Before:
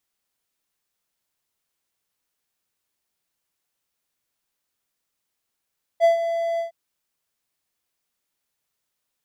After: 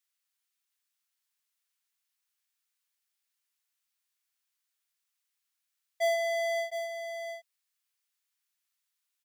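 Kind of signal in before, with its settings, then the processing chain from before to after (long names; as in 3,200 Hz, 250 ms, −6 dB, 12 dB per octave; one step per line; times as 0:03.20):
note with an ADSR envelope triangle 671 Hz, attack 44 ms, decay 123 ms, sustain −10.5 dB, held 0.59 s, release 121 ms −9 dBFS
high-pass filter 1,400 Hz 12 dB per octave
leveller curve on the samples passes 2
on a send: single-tap delay 713 ms −8 dB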